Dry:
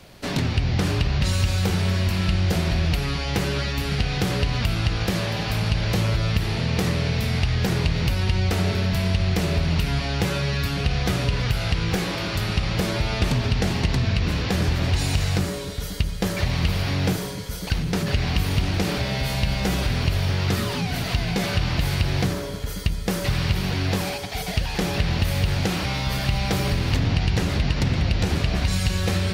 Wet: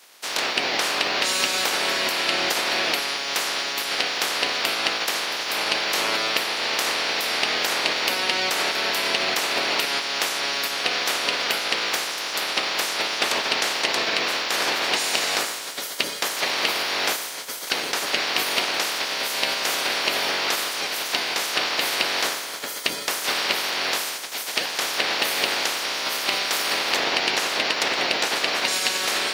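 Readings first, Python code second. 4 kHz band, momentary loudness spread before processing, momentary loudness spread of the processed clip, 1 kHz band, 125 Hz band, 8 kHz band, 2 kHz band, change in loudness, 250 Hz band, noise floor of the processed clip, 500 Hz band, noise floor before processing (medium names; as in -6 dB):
+7.5 dB, 3 LU, 3 LU, +5.5 dB, -29.5 dB, +8.5 dB, +7.0 dB, +1.5 dB, -11.5 dB, -32 dBFS, 0.0 dB, -30 dBFS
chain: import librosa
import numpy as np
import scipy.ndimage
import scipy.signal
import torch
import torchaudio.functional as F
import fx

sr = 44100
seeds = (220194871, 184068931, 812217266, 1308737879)

p1 = fx.spec_clip(x, sr, under_db=25)
p2 = scipy.signal.sosfilt(scipy.signal.butter(2, 390.0, 'highpass', fs=sr, output='sos'), p1)
p3 = fx.quant_dither(p2, sr, seeds[0], bits=6, dither='none')
p4 = p2 + (p3 * 10.0 ** (-10.5 / 20.0))
y = p4 * 10.0 ** (-3.5 / 20.0)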